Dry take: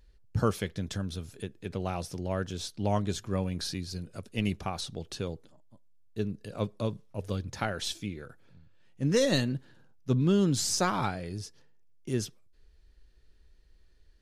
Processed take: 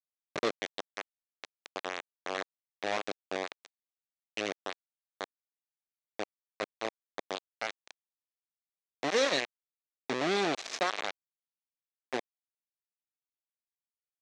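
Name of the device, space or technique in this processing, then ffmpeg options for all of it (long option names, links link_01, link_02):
hand-held game console: -af "acrusher=bits=3:mix=0:aa=0.000001,highpass=460,equalizer=frequency=930:width_type=q:width=4:gain=-6,equalizer=frequency=1400:width_type=q:width=4:gain=-5,equalizer=frequency=3000:width_type=q:width=4:gain=-4,equalizer=frequency=4900:width_type=q:width=4:gain=-6,lowpass=frequency=5500:width=0.5412,lowpass=frequency=5500:width=1.3066"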